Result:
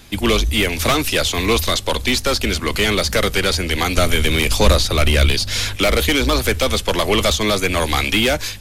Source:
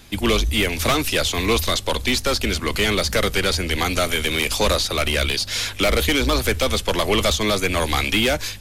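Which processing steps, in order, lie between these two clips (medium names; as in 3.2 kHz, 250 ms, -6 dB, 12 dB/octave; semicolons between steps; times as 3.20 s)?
3.97–5.76 s: bass shelf 200 Hz +9.5 dB; trim +2.5 dB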